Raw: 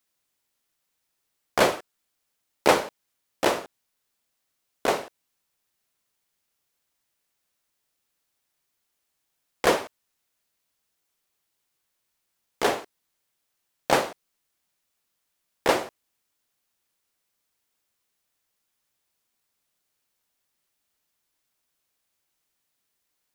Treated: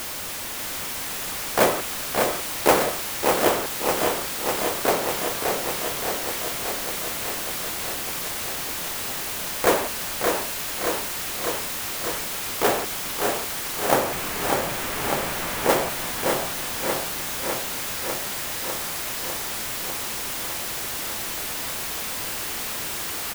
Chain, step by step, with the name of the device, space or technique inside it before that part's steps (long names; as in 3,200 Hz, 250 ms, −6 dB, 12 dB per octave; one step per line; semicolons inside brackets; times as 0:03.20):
0:13.93–0:15.70: high-frequency loss of the air 330 metres
early CD player with a faulty converter (converter with a step at zero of −24 dBFS; converter with an unsteady clock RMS 0.053 ms)
repeating echo 571 ms, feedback 38%, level −7.5 dB
feedback echo at a low word length 600 ms, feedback 80%, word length 7 bits, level −5.5 dB